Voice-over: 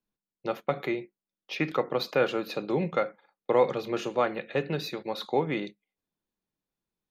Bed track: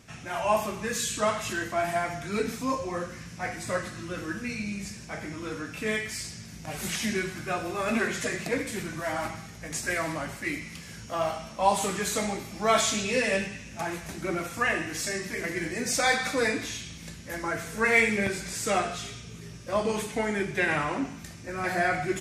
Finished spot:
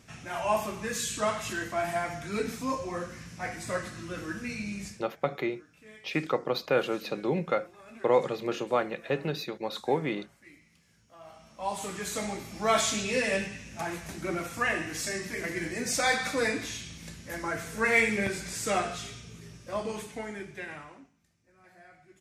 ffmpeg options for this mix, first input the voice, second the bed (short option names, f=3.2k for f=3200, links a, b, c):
-filter_complex "[0:a]adelay=4550,volume=-1dB[a];[1:a]volume=18dB,afade=t=out:st=4.85:d=0.21:silence=0.1,afade=t=in:st=11.23:d=1.34:silence=0.0944061,afade=t=out:st=18.92:d=2.19:silence=0.0446684[b];[a][b]amix=inputs=2:normalize=0"